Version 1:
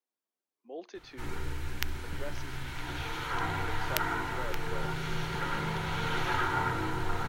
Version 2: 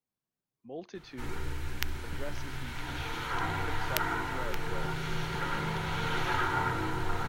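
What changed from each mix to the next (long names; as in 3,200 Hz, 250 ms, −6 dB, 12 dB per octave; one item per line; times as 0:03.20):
speech: remove high-pass filter 290 Hz 24 dB per octave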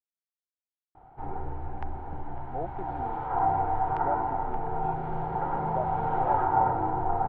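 speech: entry +1.85 s
master: add low-pass with resonance 780 Hz, resonance Q 8.2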